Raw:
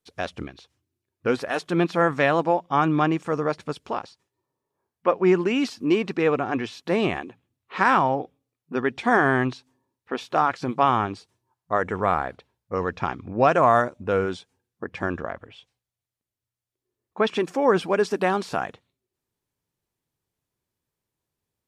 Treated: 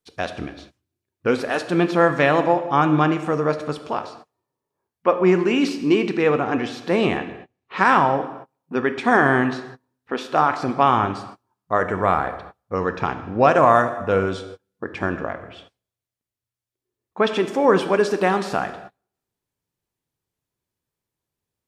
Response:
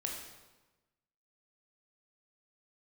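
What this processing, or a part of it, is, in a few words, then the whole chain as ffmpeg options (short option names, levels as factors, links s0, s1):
keyed gated reverb: -filter_complex "[0:a]asplit=3[s0][s1][s2];[1:a]atrim=start_sample=2205[s3];[s1][s3]afir=irnorm=-1:irlink=0[s4];[s2]apad=whole_len=955782[s5];[s4][s5]sidechaingate=range=0.0251:threshold=0.002:ratio=16:detection=peak,volume=0.708[s6];[s0][s6]amix=inputs=2:normalize=0,asettb=1/sr,asplit=3[s7][s8][s9];[s7]atrim=end=7.174[s10];[s8]atrim=start=7.17:end=7.78,asetpts=PTS-STARTPTS,afade=t=in:d=0.004:c=qsin,afade=t=out:st=0.606:d=0.004:c=qsin,lowpass=6300[s11];[s9]atrim=start=7.776[s12];[s10][s11]acrossfade=d=0.004:c1=hsin:c2=qsin[s13];[s13][s12]acrossfade=d=0.004:c1=qsin:c2=hsin,volume=0.891"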